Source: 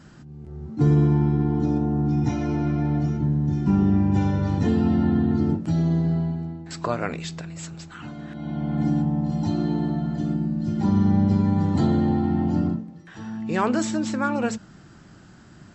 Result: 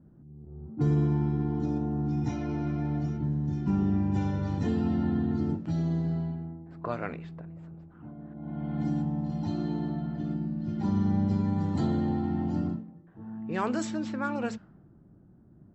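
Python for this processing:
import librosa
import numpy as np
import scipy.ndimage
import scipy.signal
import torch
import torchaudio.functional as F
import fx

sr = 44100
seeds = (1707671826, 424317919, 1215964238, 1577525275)

y = fx.env_lowpass(x, sr, base_hz=410.0, full_db=-17.5)
y = F.gain(torch.from_numpy(y), -7.0).numpy()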